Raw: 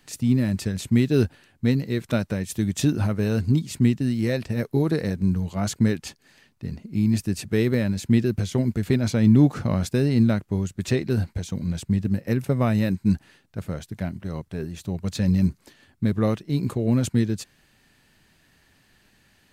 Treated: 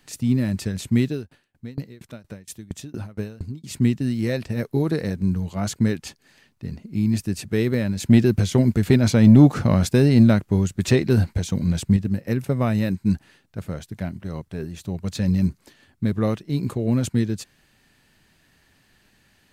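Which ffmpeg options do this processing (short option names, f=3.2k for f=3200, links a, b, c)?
-filter_complex "[0:a]asettb=1/sr,asplit=3[a][b][c];[a]atrim=end=1.084[d];[b]atrim=start=1.08:end=3.64,asetpts=PTS-STARTPTS,afade=t=in:d=0.004:c=qsin,afade=t=out:st=2.556:d=0.004:c=qsin,aeval=exprs='val(0)*pow(10,-27*if(lt(mod(4.3*n/s,1),2*abs(4.3)/1000),1-mod(4.3*n/s,1)/(2*abs(4.3)/1000),(mod(4.3*n/s,1)-2*abs(4.3)/1000)/(1-2*abs(4.3)/1000))/20)':c=same[e];[c]atrim=start=3.636[f];[d][e]acrossfade=d=0.004:c1=hsin:c2=qsin[g];[g][f]acrossfade=d=0.004:c1=qsin:c2=hsin,asettb=1/sr,asplit=3[h][i][j];[h]atrim=end=8.004[k];[i]atrim=start=8:end=11.97,asetpts=PTS-STARTPTS,afade=t=in:d=0.004:c=qsin,afade=t=out:st=3.966:d=0.004:c=qsin,acontrast=36[l];[j]atrim=start=11.966[m];[k][l]acrossfade=d=0.004:c1=hsin:c2=qsin[n];[n][m]acrossfade=d=0.004:c1=qsin:c2=hsin"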